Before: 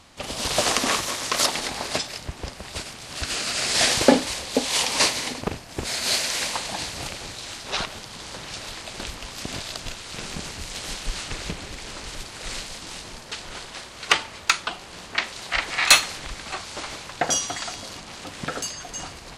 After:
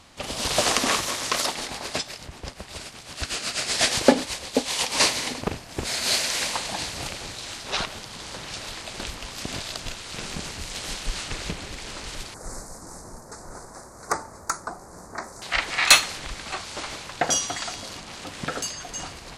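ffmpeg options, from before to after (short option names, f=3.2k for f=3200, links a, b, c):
-filter_complex "[0:a]asettb=1/sr,asplit=3[a][b][c];[a]atrim=end=1.374[d];[b]atrim=start=1.37:end=4.97,asetpts=PTS-STARTPTS,afade=t=in:d=0.004:c=qsin,afade=t=out:st=3.596:d=0.004:c=qsin,tremolo=f=8.1:d=0.61[e];[c]atrim=start=4.966[f];[d][e]acrossfade=d=0.004:c1=hsin:c2=qsin[g];[g][f]acrossfade=d=0.004:c1=qsin:c2=hsin,asettb=1/sr,asplit=3[h][i][j];[h]atrim=end=12.344[k];[i]atrim=start=12.34:end=15.42,asetpts=PTS-STARTPTS,afade=t=in:d=0.004:c=qsin,afade=t=out:st=3.076:d=0.004:c=qsin,asuperstop=centerf=3000:order=4:qfactor=0.54[l];[j]atrim=start=15.416[m];[k][l]acrossfade=d=0.004:c1=hsin:c2=qsin[n];[n][m]acrossfade=d=0.004:c1=qsin:c2=hsin"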